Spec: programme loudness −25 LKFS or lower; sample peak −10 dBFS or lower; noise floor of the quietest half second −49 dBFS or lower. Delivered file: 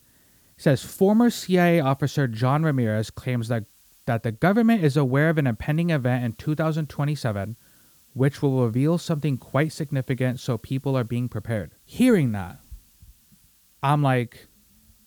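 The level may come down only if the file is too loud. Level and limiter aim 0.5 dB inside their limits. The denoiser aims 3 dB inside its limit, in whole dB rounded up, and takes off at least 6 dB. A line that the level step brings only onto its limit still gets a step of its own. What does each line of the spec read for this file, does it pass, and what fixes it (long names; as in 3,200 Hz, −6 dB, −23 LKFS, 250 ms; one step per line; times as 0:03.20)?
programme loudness −23.5 LKFS: out of spec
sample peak −7.0 dBFS: out of spec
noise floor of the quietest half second −58 dBFS: in spec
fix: level −2 dB
brickwall limiter −10.5 dBFS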